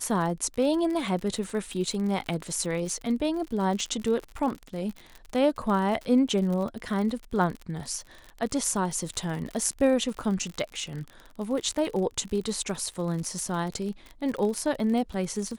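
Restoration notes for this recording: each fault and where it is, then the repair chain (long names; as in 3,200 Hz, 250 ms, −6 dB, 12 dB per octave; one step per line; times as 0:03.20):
surface crackle 50 per second −32 dBFS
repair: click removal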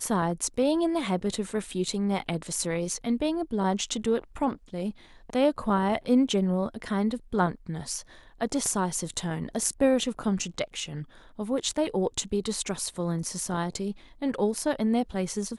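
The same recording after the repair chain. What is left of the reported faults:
none of them is left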